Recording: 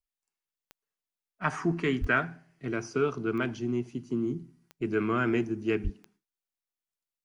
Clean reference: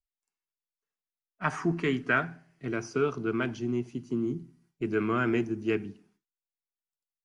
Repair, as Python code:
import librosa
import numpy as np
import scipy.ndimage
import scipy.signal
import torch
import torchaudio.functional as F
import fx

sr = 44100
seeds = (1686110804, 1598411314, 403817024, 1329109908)

y = fx.fix_declick_ar(x, sr, threshold=10.0)
y = fx.fix_deplosive(y, sr, at_s=(2.0, 5.83))